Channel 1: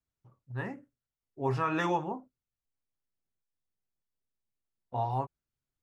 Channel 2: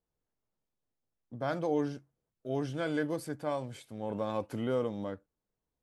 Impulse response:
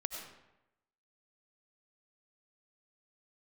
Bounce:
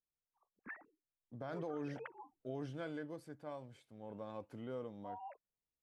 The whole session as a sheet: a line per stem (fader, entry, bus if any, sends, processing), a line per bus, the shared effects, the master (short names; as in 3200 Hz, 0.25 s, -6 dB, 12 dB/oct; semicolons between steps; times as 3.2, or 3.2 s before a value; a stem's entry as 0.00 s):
-6.0 dB, 0.10 s, no send, sine-wave speech; endless phaser -2.1 Hz; auto duck -10 dB, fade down 1.20 s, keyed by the second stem
1.16 s -16.5 dB -> 1.4 s -4.5 dB -> 2.48 s -4.5 dB -> 3.02 s -13 dB, 0.00 s, no send, high shelf 5400 Hz -8.5 dB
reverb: off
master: limiter -33.5 dBFS, peak gain reduction 10 dB